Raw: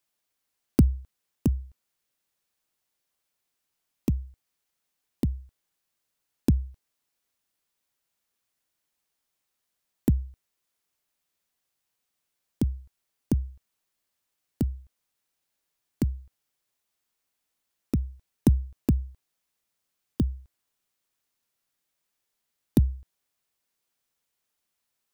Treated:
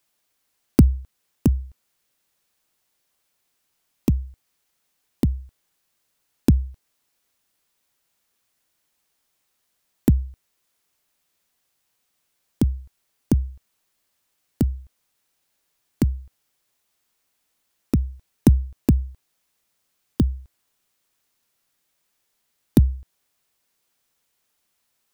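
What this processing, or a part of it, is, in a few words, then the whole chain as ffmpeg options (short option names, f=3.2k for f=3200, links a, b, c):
parallel compression: -filter_complex "[0:a]asplit=2[a][b];[b]acompressor=threshold=-35dB:ratio=6,volume=-8dB[c];[a][c]amix=inputs=2:normalize=0,volume=5dB"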